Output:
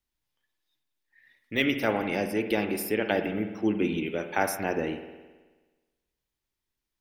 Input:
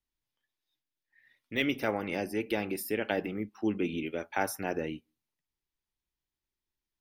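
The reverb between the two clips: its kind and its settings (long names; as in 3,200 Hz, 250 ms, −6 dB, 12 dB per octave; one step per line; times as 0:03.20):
spring reverb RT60 1.3 s, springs 53 ms, chirp 70 ms, DRR 8 dB
level +4 dB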